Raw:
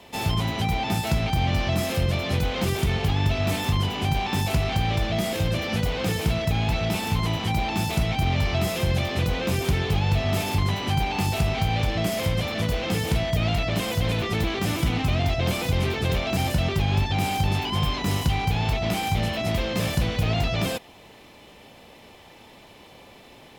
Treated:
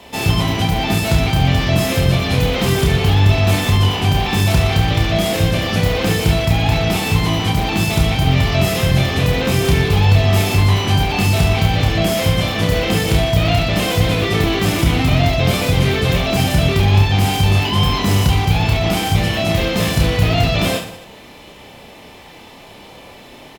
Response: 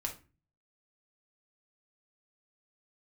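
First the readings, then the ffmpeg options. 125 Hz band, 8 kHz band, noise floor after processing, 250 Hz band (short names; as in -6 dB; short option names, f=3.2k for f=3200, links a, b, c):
+9.5 dB, +9.0 dB, -40 dBFS, +9.0 dB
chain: -af "aecho=1:1:30|69|119.7|185.6|271.3:0.631|0.398|0.251|0.158|0.1,volume=7dB"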